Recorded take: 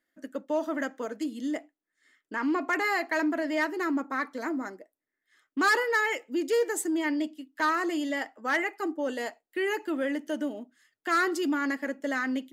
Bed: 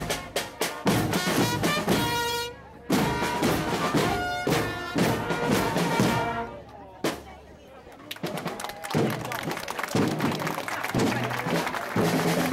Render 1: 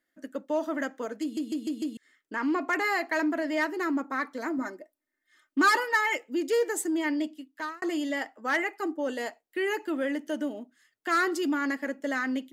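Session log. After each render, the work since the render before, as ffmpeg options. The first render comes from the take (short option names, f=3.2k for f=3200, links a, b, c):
-filter_complex "[0:a]asettb=1/sr,asplit=3[a][b][c];[a]atrim=end=4.584[d];[b]atrim=start=4.58:end=6.17,asetpts=PTS-STARTPTS,afade=t=in:d=0.004:c=qsin,afade=t=out:st=1.586:d=0.004:c=qsin,aecho=1:1:3.3:0.65,atrim=end_sample=70119[e];[c]atrim=start=6.166[f];[d][e]acrossfade=d=0.004:c1=hsin:c2=qsin[g];[g][f]acrossfade=d=0.004:c1=qsin:c2=hsin,asplit=7[h][i][j][k][l][m][n];[h]atrim=end=1.372[o];[i]atrim=start=1.218:end=1.372[p];[j]atrim=start=1.218:end=1.372[q];[k]atrim=start=1.218:end=1.372[r];[l]atrim=start=1.218:end=1.372[s];[m]atrim=start=1.968:end=7.82,asetpts=PTS-STARTPTS,afade=t=out:st=5.402:d=0.45[t];[n]atrim=start=7.82,asetpts=PTS-STARTPTS,afade=t=in:d=0.004:c=hsin[u];[o][p]acrossfade=d=0.004:c1=hsin:c2=hsin[v];[v][q]acrossfade=d=0.004:c1=hsin:c2=hsin[w];[w][r]acrossfade=d=0.004:c1=hsin:c2=hsin[x];[x][s]acrossfade=d=0.004:c1=hsin:c2=hsin[y];[t][u]concat=n=2:v=0:a=1[z];[y][z]acrossfade=d=0.004:c1=hsin:c2=hsin"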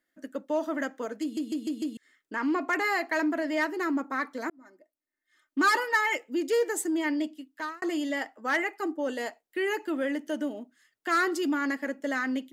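-filter_complex "[0:a]asplit=2[a][b];[a]atrim=end=4.5,asetpts=PTS-STARTPTS,afade=t=out:st=4.496:d=0.004:c=hsin[c];[b]atrim=start=4.5,asetpts=PTS-STARTPTS,afade=t=in:d=1.37[d];[c][d]concat=n=2:v=0:a=1"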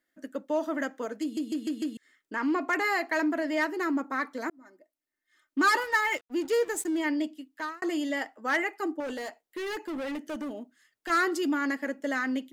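-filter_complex "[0:a]asettb=1/sr,asplit=3[a][b][c];[a]atrim=end=1.544[d];[b]atrim=start=1.54:end=1.95,asetpts=PTS-STARTPTS,afade=t=in:d=0.004:c=qsin,afade=t=out:st=0.406:d=0.004:c=qsin,equalizer=f=1.6k:t=o:w=0.74:g=10.5[e];[c]atrim=start=1.946[f];[d][e]acrossfade=d=0.004:c1=hsin:c2=qsin[g];[g][f]acrossfade=d=0.004:c1=qsin:c2=hsin,asettb=1/sr,asplit=3[h][i][j];[h]atrim=end=5.784[k];[i]atrim=start=5.78:end=7,asetpts=PTS-STARTPTS,afade=t=in:d=0.004:c=qsin,afade=t=out:st=1.216:d=0.004:c=qsin,aeval=exprs='sgn(val(0))*max(abs(val(0))-0.00501,0)':c=same[l];[j]atrim=start=6.996[m];[k][l]acrossfade=d=0.004:c1=hsin:c2=qsin[n];[n][m]acrossfade=d=0.004:c1=qsin:c2=hsin,asettb=1/sr,asplit=3[o][p][q];[o]atrim=end=9.004[r];[p]atrim=start=9:end=11.1,asetpts=PTS-STARTPTS,afade=t=in:d=0.004:c=qsin,afade=t=out:st=2.096:d=0.004:c=qsin,asoftclip=type=hard:threshold=-31.5dB[s];[q]atrim=start=11.096[t];[r][s]acrossfade=d=0.004:c1=hsin:c2=qsin[u];[u][t]acrossfade=d=0.004:c1=qsin:c2=hsin"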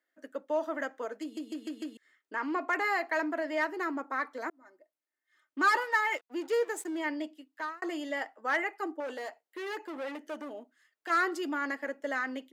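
-af "highpass=440,highshelf=f=2.9k:g=-8.5"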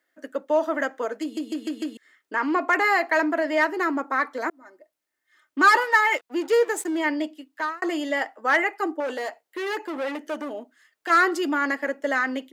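-af "volume=9dB"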